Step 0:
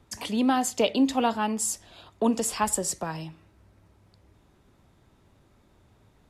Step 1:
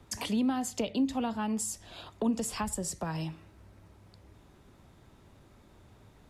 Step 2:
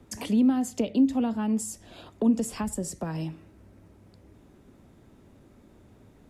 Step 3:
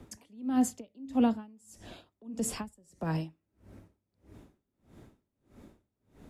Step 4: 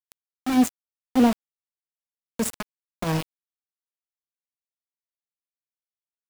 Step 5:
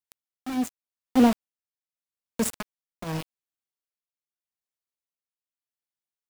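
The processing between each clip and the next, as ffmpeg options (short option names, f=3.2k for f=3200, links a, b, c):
-filter_complex "[0:a]acrossover=split=190[a][b];[b]acompressor=threshold=-36dB:ratio=6[c];[a][c]amix=inputs=2:normalize=0,volume=3dB"
-af "equalizer=f=250:t=o:w=1:g=7,equalizer=f=500:t=o:w=1:g=3,equalizer=f=1k:t=o:w=1:g=-3,equalizer=f=4k:t=o:w=1:g=-4"
-af "aeval=exprs='val(0)*pow(10,-34*(0.5-0.5*cos(2*PI*1.6*n/s))/20)':c=same,volume=3dB"
-af "aeval=exprs='val(0)*gte(abs(val(0)),0.0299)':c=same,volume=7.5dB"
-af "tremolo=f=0.84:d=0.62"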